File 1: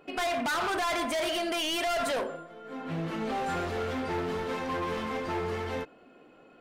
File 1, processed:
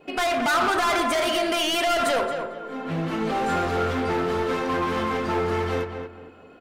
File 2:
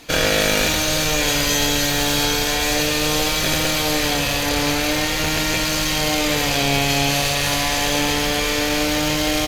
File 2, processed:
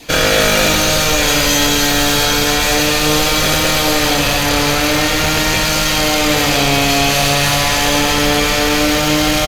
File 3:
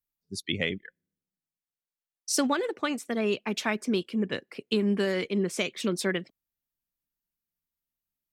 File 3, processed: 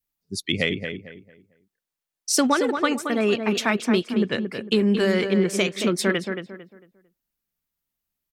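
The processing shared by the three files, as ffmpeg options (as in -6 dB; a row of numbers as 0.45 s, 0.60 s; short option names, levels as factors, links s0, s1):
-filter_complex "[0:a]adynamicequalizer=threshold=0.00562:dfrequency=1300:dqfactor=5.8:tfrequency=1300:tqfactor=5.8:attack=5:release=100:ratio=0.375:range=2.5:mode=boostabove:tftype=bell,acontrast=76,asplit=2[s0][s1];[s1]adelay=225,lowpass=f=2300:p=1,volume=0.473,asplit=2[s2][s3];[s3]adelay=225,lowpass=f=2300:p=1,volume=0.31,asplit=2[s4][s5];[s5]adelay=225,lowpass=f=2300:p=1,volume=0.31,asplit=2[s6][s7];[s7]adelay=225,lowpass=f=2300:p=1,volume=0.31[s8];[s0][s2][s4][s6][s8]amix=inputs=5:normalize=0,volume=0.891"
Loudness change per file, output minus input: +7.0 LU, +5.5 LU, +6.0 LU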